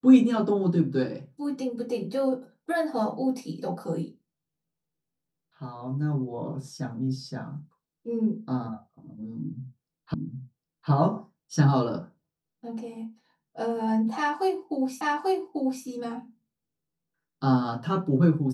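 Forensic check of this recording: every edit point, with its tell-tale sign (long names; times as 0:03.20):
0:10.14: the same again, the last 0.76 s
0:15.01: the same again, the last 0.84 s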